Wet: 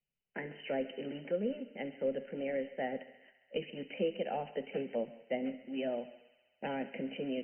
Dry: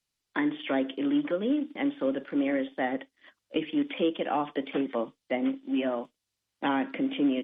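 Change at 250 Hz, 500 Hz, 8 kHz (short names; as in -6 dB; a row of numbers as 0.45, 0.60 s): -12.5 dB, -4.5 dB, n/a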